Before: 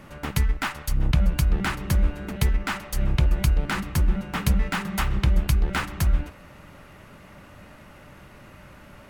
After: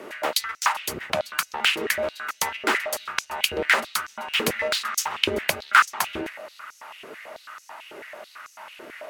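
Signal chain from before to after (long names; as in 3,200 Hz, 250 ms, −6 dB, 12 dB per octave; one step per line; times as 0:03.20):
frequency shifter +30 Hz
high-pass on a step sequencer 9.1 Hz 410–6,000 Hz
level +5 dB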